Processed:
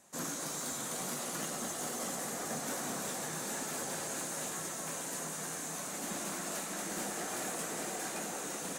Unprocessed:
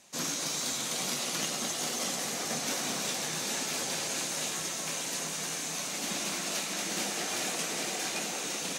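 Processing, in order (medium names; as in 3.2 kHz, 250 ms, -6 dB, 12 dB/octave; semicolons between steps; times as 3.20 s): high-order bell 3.6 kHz -9.5 dB; valve stage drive 28 dB, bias 0.2; trim -1 dB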